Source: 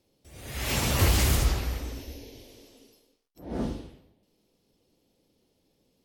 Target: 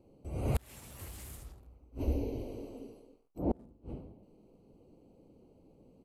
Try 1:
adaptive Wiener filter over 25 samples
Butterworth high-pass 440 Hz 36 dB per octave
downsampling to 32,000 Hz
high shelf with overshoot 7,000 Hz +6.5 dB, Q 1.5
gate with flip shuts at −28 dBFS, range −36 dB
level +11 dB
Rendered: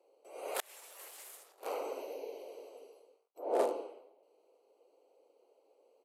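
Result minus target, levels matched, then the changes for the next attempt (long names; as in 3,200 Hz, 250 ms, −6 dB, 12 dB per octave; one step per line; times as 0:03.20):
500 Hz band +6.0 dB
remove: Butterworth high-pass 440 Hz 36 dB per octave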